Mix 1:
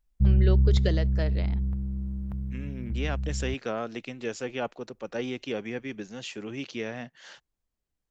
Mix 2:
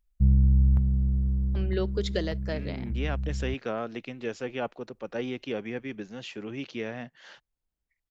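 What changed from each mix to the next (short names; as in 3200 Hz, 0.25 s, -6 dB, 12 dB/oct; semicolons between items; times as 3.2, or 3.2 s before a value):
first voice: entry +1.30 s; second voice: add air absorption 110 m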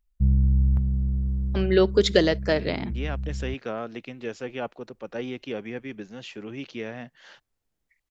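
first voice +11.0 dB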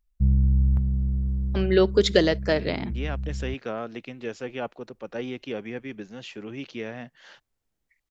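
none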